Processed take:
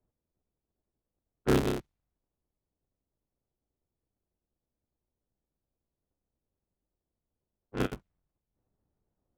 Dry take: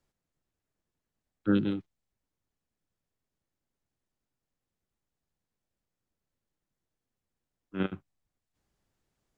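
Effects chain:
sub-harmonics by changed cycles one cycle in 3, inverted
low-pass that shuts in the quiet parts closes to 760 Hz, open at −30 dBFS

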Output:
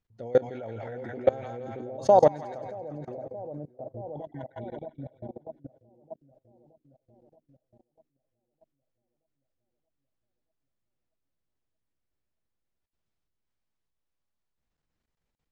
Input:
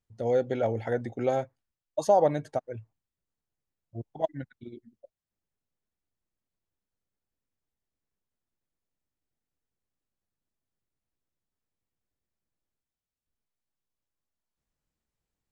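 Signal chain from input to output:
high-frequency loss of the air 98 metres
echo with a time of its own for lows and highs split 740 Hz, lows 626 ms, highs 168 ms, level −4 dB
output level in coarse steps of 22 dB
level +6.5 dB

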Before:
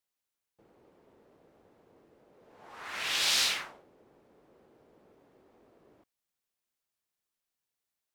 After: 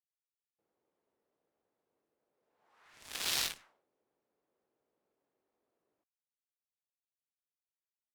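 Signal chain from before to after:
low-shelf EQ 290 Hz −9 dB
harmonic generator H 2 −19 dB, 3 −11 dB, 5 −37 dB, 7 −27 dB, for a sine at −14.5 dBFS
level +1.5 dB

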